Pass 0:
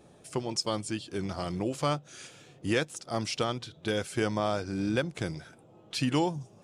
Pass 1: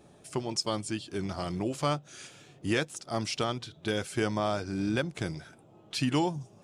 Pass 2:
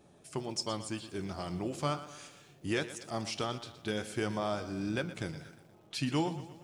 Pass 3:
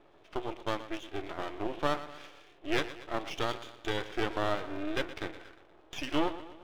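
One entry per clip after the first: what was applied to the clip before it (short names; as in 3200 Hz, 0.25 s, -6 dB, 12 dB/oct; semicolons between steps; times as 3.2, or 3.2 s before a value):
notch 500 Hz, Q 12
flange 1.4 Hz, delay 9.8 ms, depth 4.7 ms, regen +80%; lo-fi delay 0.119 s, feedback 55%, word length 10-bit, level -14 dB
brick-wall FIR band-pass 270–3700 Hz; half-wave rectifier; gain +7 dB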